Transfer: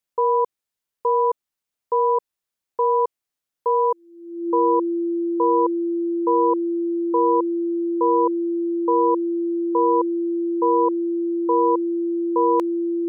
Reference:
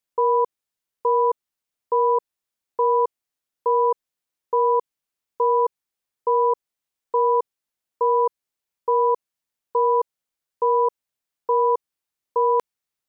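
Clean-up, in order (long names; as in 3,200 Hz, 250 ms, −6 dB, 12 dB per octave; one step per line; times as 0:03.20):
notch filter 340 Hz, Q 30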